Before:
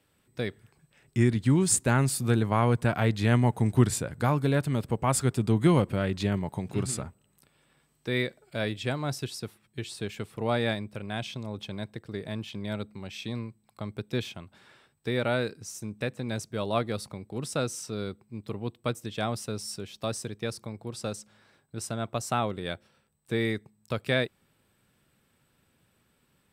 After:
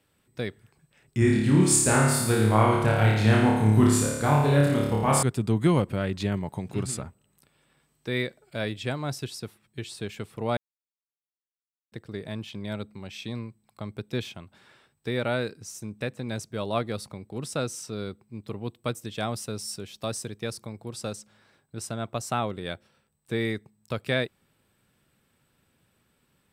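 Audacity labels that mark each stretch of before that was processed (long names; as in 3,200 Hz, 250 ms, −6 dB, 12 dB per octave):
1.190000	5.230000	flutter between parallel walls apart 4.8 metres, dies away in 1 s
10.570000	11.920000	silence
18.640000	21.130000	parametric band 13,000 Hz +3.5 dB 1.7 octaves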